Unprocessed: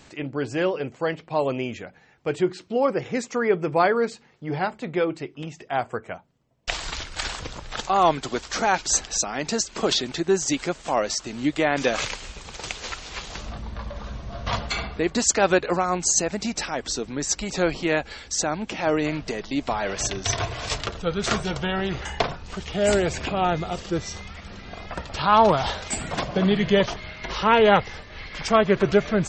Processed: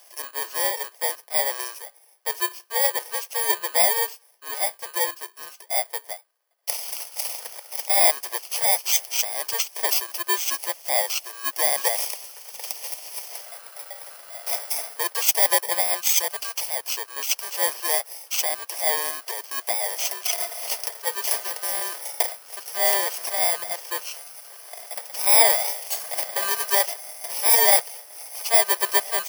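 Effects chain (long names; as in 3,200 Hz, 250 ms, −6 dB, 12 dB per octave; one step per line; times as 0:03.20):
samples in bit-reversed order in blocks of 32 samples
inverse Chebyshev high-pass filter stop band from 220 Hz, stop band 50 dB
level +1.5 dB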